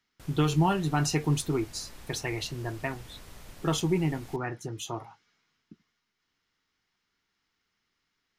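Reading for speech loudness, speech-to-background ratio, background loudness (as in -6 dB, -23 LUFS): -30.0 LUFS, 20.0 dB, -50.0 LUFS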